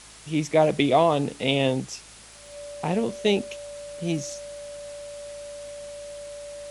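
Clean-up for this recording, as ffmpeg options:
-af "adeclick=t=4,bandreject=f=53.9:t=h:w=4,bandreject=f=107.8:t=h:w=4,bandreject=f=161.7:t=h:w=4,bandreject=f=215.6:t=h:w=4,bandreject=f=580:w=30,afwtdn=0.0056"

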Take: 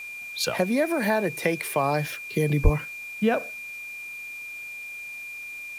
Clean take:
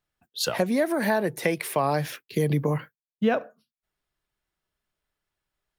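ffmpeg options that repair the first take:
-filter_complex "[0:a]bandreject=f=2400:w=30,asplit=3[s0][s1][s2];[s0]afade=t=out:st=2.63:d=0.02[s3];[s1]highpass=f=140:w=0.5412,highpass=f=140:w=1.3066,afade=t=in:st=2.63:d=0.02,afade=t=out:st=2.75:d=0.02[s4];[s2]afade=t=in:st=2.75:d=0.02[s5];[s3][s4][s5]amix=inputs=3:normalize=0,afftdn=nr=30:nf=-38"

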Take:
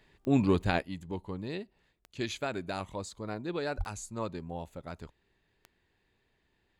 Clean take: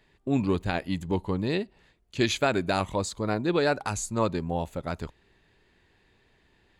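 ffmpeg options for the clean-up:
-filter_complex "[0:a]adeclick=t=4,asplit=3[s0][s1][s2];[s0]afade=t=out:st=3.77:d=0.02[s3];[s1]highpass=f=140:w=0.5412,highpass=f=140:w=1.3066,afade=t=in:st=3.77:d=0.02,afade=t=out:st=3.89:d=0.02[s4];[s2]afade=t=in:st=3.89:d=0.02[s5];[s3][s4][s5]amix=inputs=3:normalize=0,asetnsamples=n=441:p=0,asendcmd='0.82 volume volume 10dB',volume=1"

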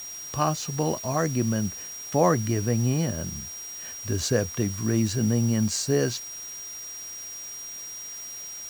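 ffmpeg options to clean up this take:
-af "bandreject=f=5700:w=30,afwtdn=0.005"

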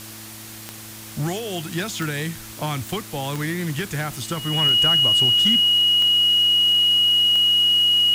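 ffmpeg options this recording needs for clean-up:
-af "adeclick=t=4,bandreject=f=109.5:t=h:w=4,bandreject=f=219:t=h:w=4,bandreject=f=328.5:t=h:w=4,bandreject=f=2900:w=30,afwtdn=0.013"

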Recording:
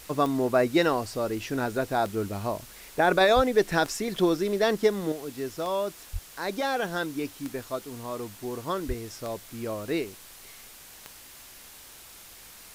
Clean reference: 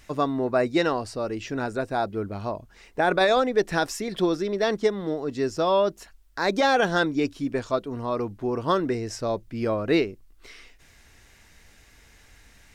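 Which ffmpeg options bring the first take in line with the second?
-filter_complex "[0:a]adeclick=t=4,asplit=3[s0][s1][s2];[s0]afade=t=out:st=3.35:d=0.02[s3];[s1]highpass=f=140:w=0.5412,highpass=f=140:w=1.3066,afade=t=in:st=3.35:d=0.02,afade=t=out:st=3.47:d=0.02[s4];[s2]afade=t=in:st=3.47:d=0.02[s5];[s3][s4][s5]amix=inputs=3:normalize=0,asplit=3[s6][s7][s8];[s6]afade=t=out:st=6.12:d=0.02[s9];[s7]highpass=f=140:w=0.5412,highpass=f=140:w=1.3066,afade=t=in:st=6.12:d=0.02,afade=t=out:st=6.24:d=0.02[s10];[s8]afade=t=in:st=6.24:d=0.02[s11];[s9][s10][s11]amix=inputs=3:normalize=0,asplit=3[s12][s13][s14];[s12]afade=t=out:st=8.87:d=0.02[s15];[s13]highpass=f=140:w=0.5412,highpass=f=140:w=1.3066,afade=t=in:st=8.87:d=0.02,afade=t=out:st=8.99:d=0.02[s16];[s14]afade=t=in:st=8.99:d=0.02[s17];[s15][s16][s17]amix=inputs=3:normalize=0,afwtdn=0.0045,asetnsamples=n=441:p=0,asendcmd='5.12 volume volume 7.5dB',volume=1"

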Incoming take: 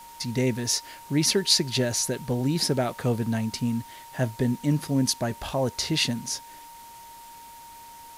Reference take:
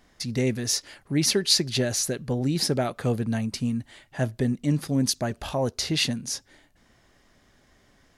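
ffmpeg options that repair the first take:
-af "bandreject=f=930:w=30,afwtdn=0.0032"

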